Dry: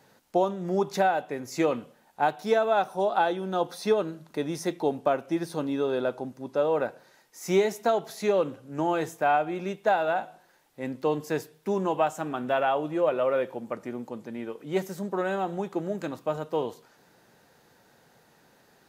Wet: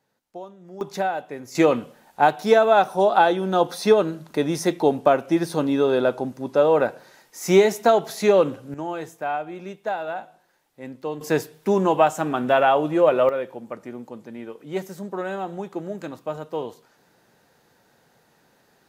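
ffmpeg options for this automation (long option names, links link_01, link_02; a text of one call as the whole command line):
ffmpeg -i in.wav -af "asetnsamples=nb_out_samples=441:pad=0,asendcmd='0.81 volume volume -1dB;1.55 volume volume 7.5dB;8.74 volume volume -3.5dB;11.21 volume volume 7.5dB;13.29 volume volume -0.5dB',volume=-13.5dB" out.wav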